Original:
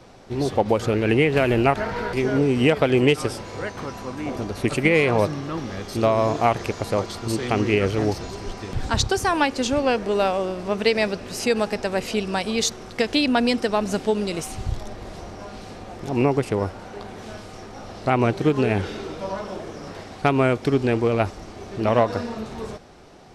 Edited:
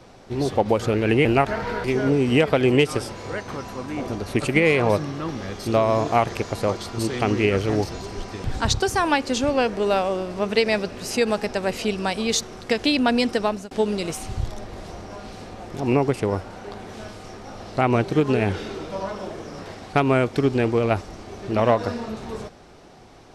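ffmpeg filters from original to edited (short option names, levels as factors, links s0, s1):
-filter_complex "[0:a]asplit=3[s0][s1][s2];[s0]atrim=end=1.252[s3];[s1]atrim=start=1.538:end=14,asetpts=PTS-STARTPTS,afade=t=out:st=12.202:d=0.26[s4];[s2]atrim=start=14,asetpts=PTS-STARTPTS,afade=t=in:d=0.004:c=hsin[s5];[s4][s5]concat=n=2:v=0:a=1[s6];[s3][s6]acrossfade=d=0.004:c1=hsin:c2=hsin"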